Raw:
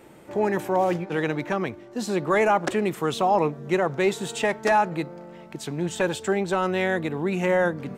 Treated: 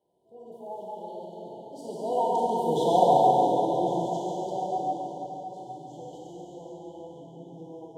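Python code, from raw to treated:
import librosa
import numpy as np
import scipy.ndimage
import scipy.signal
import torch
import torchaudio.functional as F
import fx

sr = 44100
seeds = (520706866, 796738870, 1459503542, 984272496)

p1 = fx.doppler_pass(x, sr, speed_mps=42, closest_m=7.0, pass_at_s=2.74)
p2 = scipy.signal.sosfilt(scipy.signal.butter(2, 40.0, 'highpass', fs=sr, output='sos'), p1)
p3 = fx.peak_eq(p2, sr, hz=800.0, db=8.5, octaves=1.4)
p4 = fx.rider(p3, sr, range_db=3, speed_s=0.5)
p5 = fx.rotary_switch(p4, sr, hz=0.9, then_hz=6.0, switch_at_s=3.03)
p6 = fx.brickwall_bandstop(p5, sr, low_hz=1000.0, high_hz=2900.0)
p7 = p6 + fx.echo_single(p6, sr, ms=139, db=-6.0, dry=0)
p8 = fx.rev_plate(p7, sr, seeds[0], rt60_s=4.7, hf_ratio=0.85, predelay_ms=0, drr_db=-7.0)
y = p8 * librosa.db_to_amplitude(-4.5)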